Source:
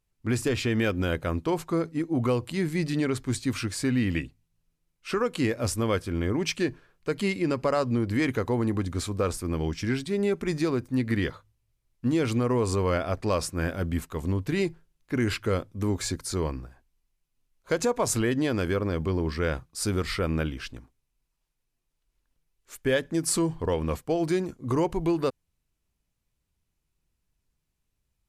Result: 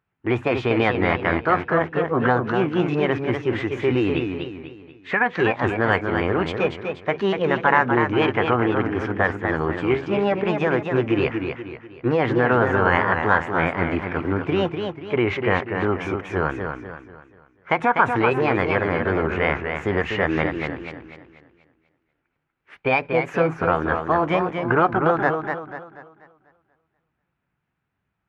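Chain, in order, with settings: high-pass 110 Hz; high-order bell 1.2 kHz +11.5 dB; formant shift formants +6 st; tape spacing loss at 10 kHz 40 dB; modulated delay 243 ms, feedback 40%, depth 121 cents, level -6 dB; trim +6.5 dB

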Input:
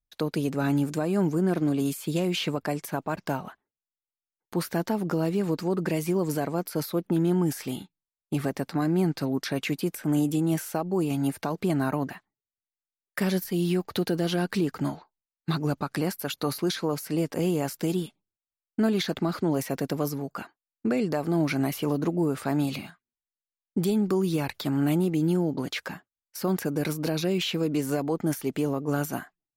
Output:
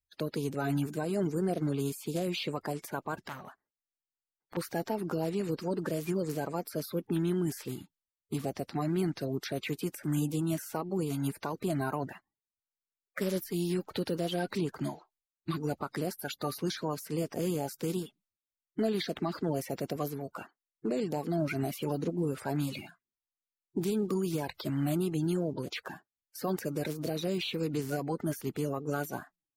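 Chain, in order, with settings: coarse spectral quantiser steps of 30 dB; 3.22–4.57 s: transformer saturation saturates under 2 kHz; trim -5.5 dB

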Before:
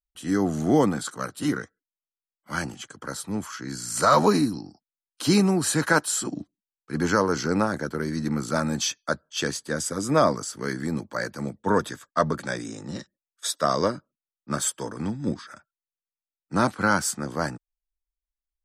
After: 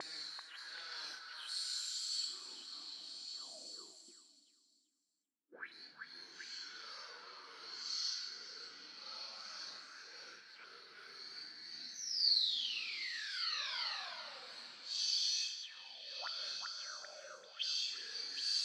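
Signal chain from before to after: reverse; compression 6:1, threshold -29 dBFS, peak gain reduction 14.5 dB; reverse; dynamic bell 7.7 kHz, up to +5 dB, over -45 dBFS, Q 0.71; painted sound fall, 8.20–8.72 s, 460–6400 Hz -31 dBFS; waveshaping leveller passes 3; Schroeder reverb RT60 0.73 s, combs from 25 ms, DRR 11 dB; Paulstretch 4.9×, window 0.05 s, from 5.76 s; gate -46 dBFS, range -15 dB; tone controls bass -7 dB, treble -8 dB; auto-wah 290–4400 Hz, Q 7.9, up, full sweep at -28 dBFS; repeats whose band climbs or falls 387 ms, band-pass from 1.3 kHz, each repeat 0.7 oct, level -1.5 dB; trim -1.5 dB

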